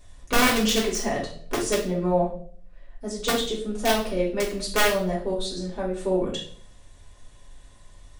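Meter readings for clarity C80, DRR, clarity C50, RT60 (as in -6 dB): 12.0 dB, -5.5 dB, 6.0 dB, 0.55 s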